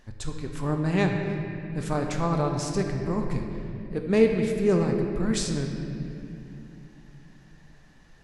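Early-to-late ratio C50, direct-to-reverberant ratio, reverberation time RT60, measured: 3.5 dB, 2.0 dB, 2.8 s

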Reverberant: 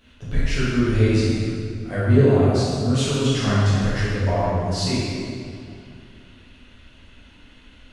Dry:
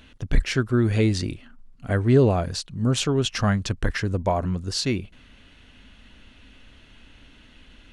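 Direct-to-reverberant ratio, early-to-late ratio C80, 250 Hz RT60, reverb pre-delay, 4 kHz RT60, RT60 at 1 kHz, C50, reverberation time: −11.0 dB, −2.0 dB, 2.7 s, 7 ms, 1.8 s, 2.4 s, −4.0 dB, 2.4 s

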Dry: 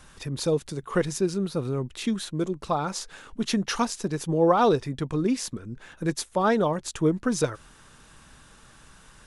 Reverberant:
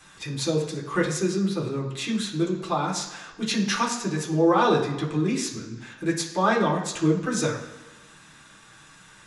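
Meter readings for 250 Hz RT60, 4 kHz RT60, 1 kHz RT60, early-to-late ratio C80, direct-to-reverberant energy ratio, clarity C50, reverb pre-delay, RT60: 1.1 s, 1.1 s, 1.2 s, 9.5 dB, −4.5 dB, 7.0 dB, 3 ms, 1.1 s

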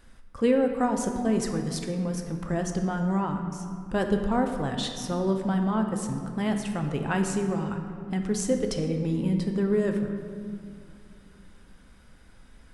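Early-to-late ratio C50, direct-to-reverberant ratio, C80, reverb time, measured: 6.0 dB, 4.0 dB, 7.0 dB, 2.5 s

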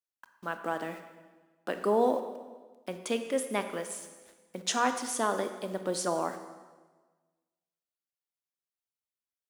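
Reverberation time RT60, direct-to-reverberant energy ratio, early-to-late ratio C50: 1.3 s, 7.5 dB, 9.0 dB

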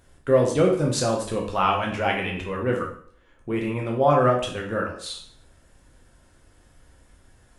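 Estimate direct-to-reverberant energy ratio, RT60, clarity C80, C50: −1.0 dB, 0.55 s, 10.5 dB, 5.5 dB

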